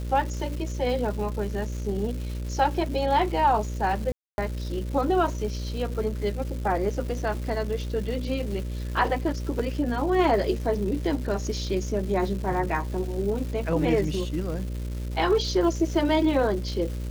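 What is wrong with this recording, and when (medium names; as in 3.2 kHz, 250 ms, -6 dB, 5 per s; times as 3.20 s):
buzz 60 Hz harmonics 10 -31 dBFS
crackle 500 per s -35 dBFS
4.12–4.38 s: dropout 261 ms
9.59–9.60 s: dropout 5.1 ms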